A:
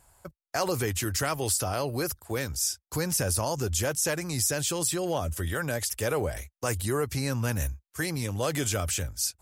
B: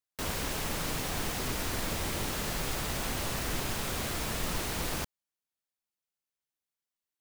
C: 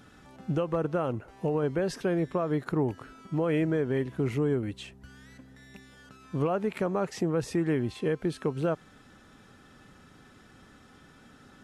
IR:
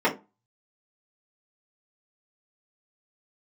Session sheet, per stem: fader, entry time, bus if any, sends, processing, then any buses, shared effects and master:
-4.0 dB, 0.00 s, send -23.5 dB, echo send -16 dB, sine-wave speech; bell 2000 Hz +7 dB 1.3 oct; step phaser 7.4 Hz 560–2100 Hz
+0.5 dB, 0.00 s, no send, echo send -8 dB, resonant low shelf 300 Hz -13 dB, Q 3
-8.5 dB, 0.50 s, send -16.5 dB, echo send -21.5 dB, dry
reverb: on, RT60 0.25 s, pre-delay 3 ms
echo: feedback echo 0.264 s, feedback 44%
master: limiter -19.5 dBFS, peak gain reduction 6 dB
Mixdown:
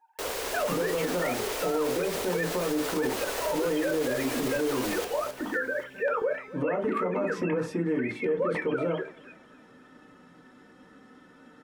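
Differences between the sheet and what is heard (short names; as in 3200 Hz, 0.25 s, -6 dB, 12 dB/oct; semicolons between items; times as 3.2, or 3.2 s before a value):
stem C: entry 0.50 s -> 0.20 s; reverb return +8.5 dB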